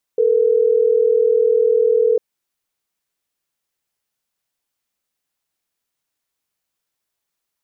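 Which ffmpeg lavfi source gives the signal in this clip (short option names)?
-f lavfi -i "aevalsrc='0.188*(sin(2*PI*440*t)+sin(2*PI*480*t))*clip(min(mod(t,6),2-mod(t,6))/0.005,0,1)':d=3.12:s=44100"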